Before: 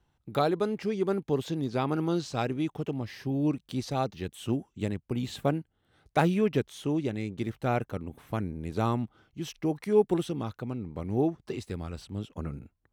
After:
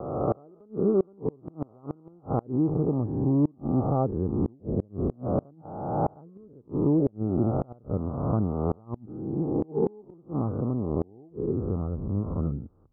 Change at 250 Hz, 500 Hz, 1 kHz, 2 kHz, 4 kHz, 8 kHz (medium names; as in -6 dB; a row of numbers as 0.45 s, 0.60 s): +3.0 dB, +0.5 dB, -1.5 dB, under -20 dB, under -35 dB, under -30 dB